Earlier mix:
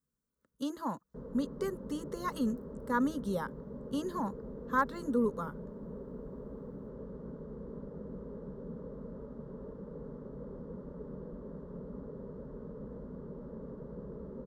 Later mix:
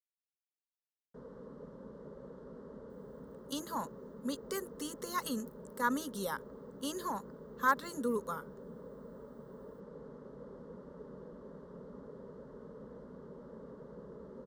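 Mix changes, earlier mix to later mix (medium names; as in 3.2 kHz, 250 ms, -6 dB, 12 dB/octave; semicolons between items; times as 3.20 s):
speech: entry +2.90 s; master: add tilt EQ +3 dB/octave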